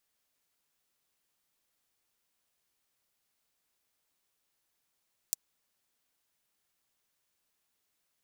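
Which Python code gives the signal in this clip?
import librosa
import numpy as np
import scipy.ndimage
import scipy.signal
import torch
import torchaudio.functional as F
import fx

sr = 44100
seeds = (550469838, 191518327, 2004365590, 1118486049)

y = fx.drum_hat(sr, length_s=0.24, from_hz=6100.0, decay_s=0.02)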